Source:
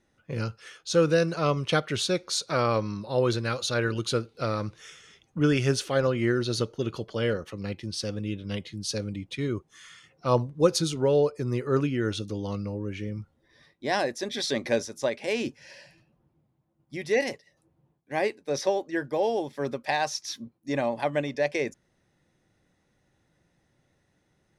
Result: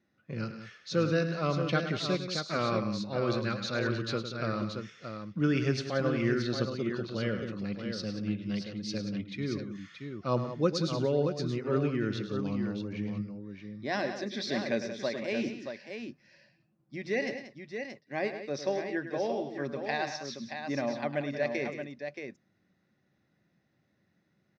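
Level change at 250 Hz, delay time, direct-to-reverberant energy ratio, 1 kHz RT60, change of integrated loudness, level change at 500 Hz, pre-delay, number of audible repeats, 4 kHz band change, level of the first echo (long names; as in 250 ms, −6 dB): −1.5 dB, 104 ms, no reverb audible, no reverb audible, −4.5 dB, −5.5 dB, no reverb audible, 3, −5.5 dB, −10.5 dB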